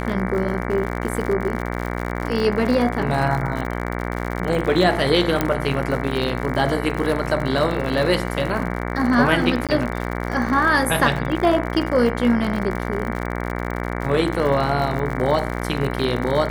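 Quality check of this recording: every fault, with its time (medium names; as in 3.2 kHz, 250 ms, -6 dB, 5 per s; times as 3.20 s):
buzz 60 Hz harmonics 38 -26 dBFS
crackle 75 per s -26 dBFS
5.41 s: pop -5 dBFS
9.67–9.69 s: dropout 17 ms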